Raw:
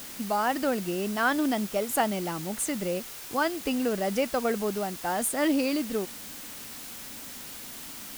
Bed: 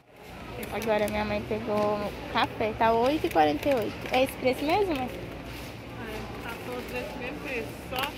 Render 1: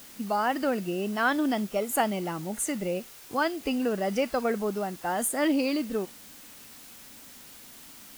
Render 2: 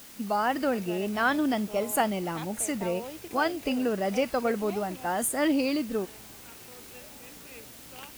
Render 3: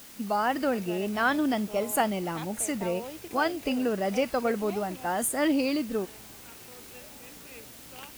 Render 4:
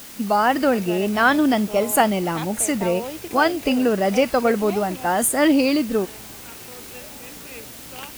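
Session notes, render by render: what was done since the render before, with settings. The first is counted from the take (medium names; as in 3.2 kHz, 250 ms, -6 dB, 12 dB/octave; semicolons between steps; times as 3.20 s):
noise print and reduce 7 dB
add bed -16 dB
no audible change
trim +8.5 dB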